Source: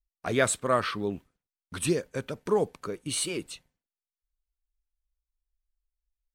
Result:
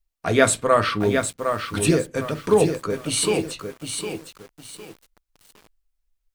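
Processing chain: reverberation RT60 0.20 s, pre-delay 4 ms, DRR 6.5 dB; bit-crushed delay 758 ms, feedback 35%, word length 8-bit, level -6 dB; trim +6.5 dB

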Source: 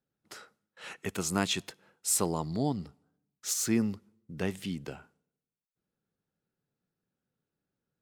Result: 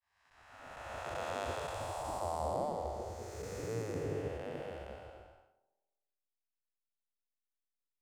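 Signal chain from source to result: spectral blur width 796 ms; expander -58 dBFS; FFT filter 110 Hz 0 dB, 290 Hz +8 dB, 15 kHz -29 dB; spectral gate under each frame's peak -15 dB weak; in parallel at -5.5 dB: hysteresis with a dead band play -59 dBFS; on the sum: treble shelf 11 kHz +10 dB; on a send: tape echo 70 ms, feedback 76%, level -13 dB, low-pass 1.4 kHz; on the sum: trim +7.5 dB

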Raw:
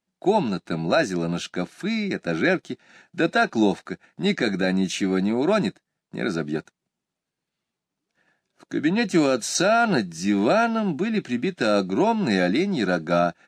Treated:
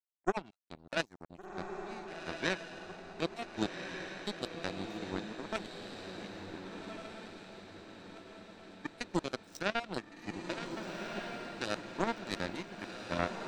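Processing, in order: random holes in the spectrogram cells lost 30%; power-law waveshaper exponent 3; echo that smears into a reverb 1504 ms, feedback 50%, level -4.5 dB; trim -4.5 dB

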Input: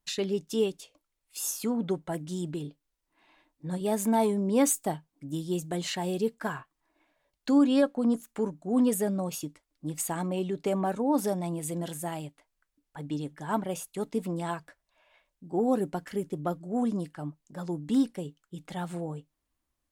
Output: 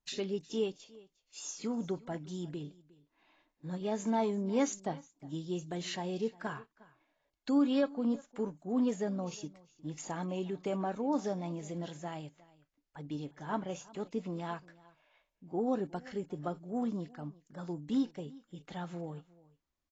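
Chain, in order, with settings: delay 358 ms -22 dB; trim -6 dB; AAC 24 kbps 16 kHz

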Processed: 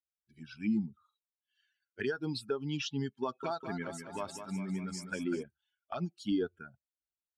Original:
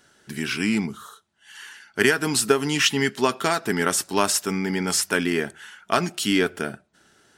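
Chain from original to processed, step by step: expander on every frequency bin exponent 2; low-pass 4 kHz 12 dB/octave; peaking EQ 1.9 kHz -10.5 dB 0.22 oct; peak limiter -17.5 dBFS, peak gain reduction 9.5 dB; touch-sensitive phaser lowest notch 150 Hz, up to 2.3 kHz, full sweep at -25 dBFS; 3.23–5.43 s: modulated delay 199 ms, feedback 57%, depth 74 cents, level -8.5 dB; trim -4.5 dB

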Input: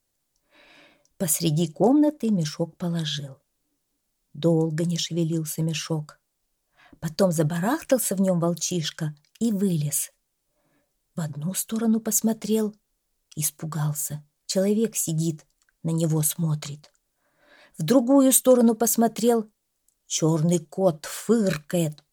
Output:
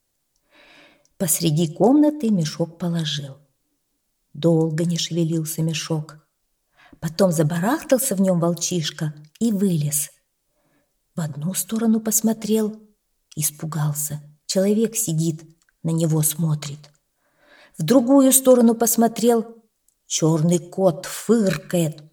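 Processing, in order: on a send: treble shelf 9.5 kHz -10 dB + reverberation, pre-delay 92 ms, DRR 21.5 dB; on the sum: trim +3.5 dB

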